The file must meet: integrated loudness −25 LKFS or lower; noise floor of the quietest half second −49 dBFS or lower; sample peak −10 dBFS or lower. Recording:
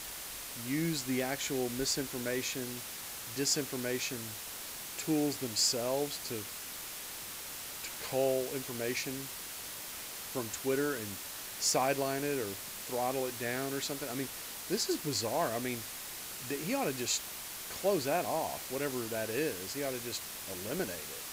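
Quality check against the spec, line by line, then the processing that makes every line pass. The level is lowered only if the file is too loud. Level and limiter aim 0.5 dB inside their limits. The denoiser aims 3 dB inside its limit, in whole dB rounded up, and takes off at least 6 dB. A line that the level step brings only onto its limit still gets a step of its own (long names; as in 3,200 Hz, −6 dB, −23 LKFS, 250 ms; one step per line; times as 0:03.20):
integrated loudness −34.5 LKFS: in spec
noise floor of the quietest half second −43 dBFS: out of spec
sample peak −15.5 dBFS: in spec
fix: broadband denoise 9 dB, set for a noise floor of −43 dBFS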